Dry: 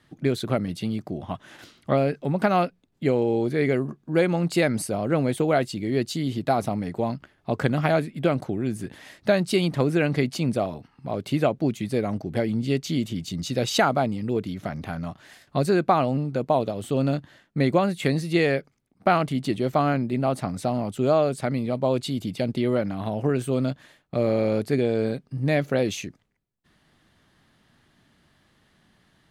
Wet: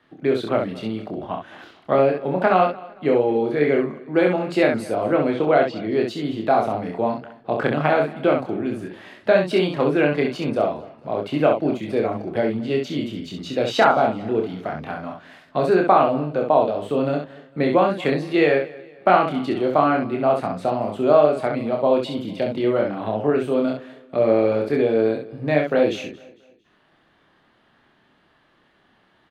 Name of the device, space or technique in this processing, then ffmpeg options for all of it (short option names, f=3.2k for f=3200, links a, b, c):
slapback doubling: -filter_complex "[0:a]equalizer=f=2k:t=o:w=0.44:g=-3.5,asettb=1/sr,asplit=3[a][b][c];[a]atrim=end=5.054[d];[b]atrim=start=5.05:end=5.89,asetpts=PTS-STARTPTS,afade=t=in:d=0.004:c=qsin,afade=t=out:st=0.836:d=0.004:c=qsin,lowpass=f=5.8k:w=0.5412,lowpass=f=5.8k:w=1.3066[e];[c]atrim=start=5.886[f];[d][e]acrossfade=d=0.004:c1=hsin:c2=qsin[g];[g][f]acrossfade=d=0.004:c1=qsin:c2=hsin,asplit=3[h][i][j];[i]adelay=27,volume=-4dB[k];[j]adelay=66,volume=-5dB[l];[h][k][l]amix=inputs=3:normalize=0,acrossover=split=280 3400:gain=0.251 1 0.126[m][n][o];[m][n][o]amix=inputs=3:normalize=0,aecho=1:1:226|452|678:0.0891|0.0348|0.0136,volume=4dB"